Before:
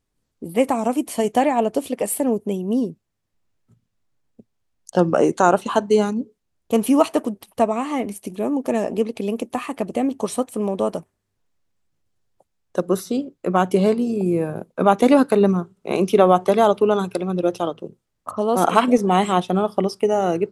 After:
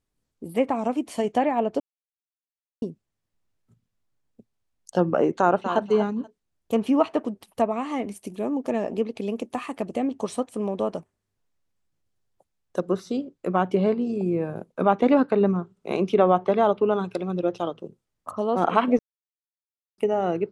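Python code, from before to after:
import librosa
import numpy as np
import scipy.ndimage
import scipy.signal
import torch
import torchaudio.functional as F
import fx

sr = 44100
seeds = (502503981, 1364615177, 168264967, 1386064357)

y = fx.echo_throw(x, sr, start_s=5.4, length_s=0.42, ms=240, feedback_pct=15, wet_db=-9.5)
y = fx.edit(y, sr, fx.silence(start_s=1.8, length_s=1.02),
    fx.silence(start_s=18.99, length_s=0.99), tone=tone)
y = fx.env_lowpass_down(y, sr, base_hz=2800.0, full_db=-14.0)
y = y * librosa.db_to_amplitude(-4.5)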